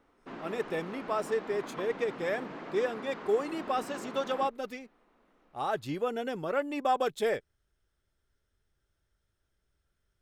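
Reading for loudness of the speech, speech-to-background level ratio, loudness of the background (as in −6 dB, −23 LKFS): −33.0 LKFS, 10.0 dB, −43.0 LKFS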